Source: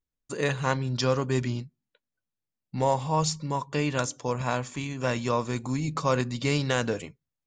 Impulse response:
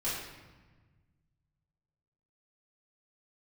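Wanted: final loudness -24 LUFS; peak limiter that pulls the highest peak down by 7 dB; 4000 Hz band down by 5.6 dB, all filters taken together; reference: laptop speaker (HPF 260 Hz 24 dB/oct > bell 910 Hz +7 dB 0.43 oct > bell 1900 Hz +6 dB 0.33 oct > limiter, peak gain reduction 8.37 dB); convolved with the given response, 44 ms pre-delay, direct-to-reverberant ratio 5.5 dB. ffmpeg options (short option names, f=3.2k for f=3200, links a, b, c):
-filter_complex "[0:a]equalizer=f=4k:t=o:g=-8,alimiter=limit=-17.5dB:level=0:latency=1,asplit=2[a][b];[1:a]atrim=start_sample=2205,adelay=44[c];[b][c]afir=irnorm=-1:irlink=0,volume=-11.5dB[d];[a][d]amix=inputs=2:normalize=0,highpass=f=260:w=0.5412,highpass=f=260:w=1.3066,equalizer=f=910:t=o:w=0.43:g=7,equalizer=f=1.9k:t=o:w=0.33:g=6,volume=8.5dB,alimiter=limit=-12.5dB:level=0:latency=1"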